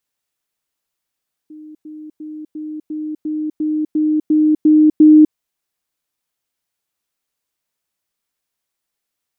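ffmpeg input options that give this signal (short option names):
-f lavfi -i "aevalsrc='pow(10,(-33.5+3*floor(t/0.35))/20)*sin(2*PI*307*t)*clip(min(mod(t,0.35),0.25-mod(t,0.35))/0.005,0,1)':d=3.85:s=44100"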